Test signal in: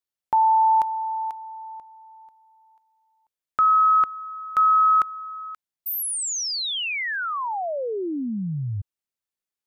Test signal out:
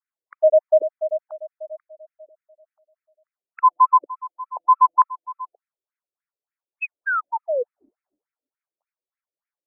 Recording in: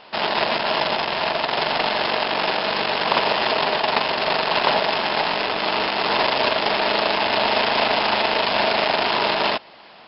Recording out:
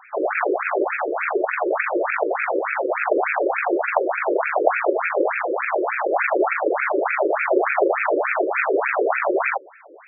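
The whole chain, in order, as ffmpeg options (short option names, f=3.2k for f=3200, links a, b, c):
-af "highpass=f=300:t=q:w=0.5412,highpass=f=300:t=q:w=1.307,lowpass=f=3k:t=q:w=0.5176,lowpass=f=3k:t=q:w=0.7071,lowpass=f=3k:t=q:w=1.932,afreqshift=-260,afftfilt=real='re*between(b*sr/1024,400*pow(1900/400,0.5+0.5*sin(2*PI*3.4*pts/sr))/1.41,400*pow(1900/400,0.5+0.5*sin(2*PI*3.4*pts/sr))*1.41)':imag='im*between(b*sr/1024,400*pow(1900/400,0.5+0.5*sin(2*PI*3.4*pts/sr))/1.41,400*pow(1900/400,0.5+0.5*sin(2*PI*3.4*pts/sr))*1.41)':win_size=1024:overlap=0.75,volume=6.5dB"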